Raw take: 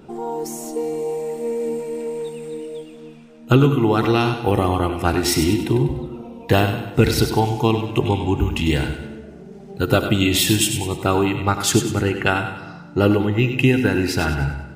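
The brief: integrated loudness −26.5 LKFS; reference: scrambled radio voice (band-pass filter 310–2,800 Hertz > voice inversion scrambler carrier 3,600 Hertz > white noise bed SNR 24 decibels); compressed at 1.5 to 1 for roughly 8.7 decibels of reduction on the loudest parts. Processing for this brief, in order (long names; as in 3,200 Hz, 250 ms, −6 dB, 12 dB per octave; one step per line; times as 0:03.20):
downward compressor 1.5 to 1, threshold −35 dBFS
band-pass filter 310–2,800 Hz
voice inversion scrambler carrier 3,600 Hz
white noise bed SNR 24 dB
level +1.5 dB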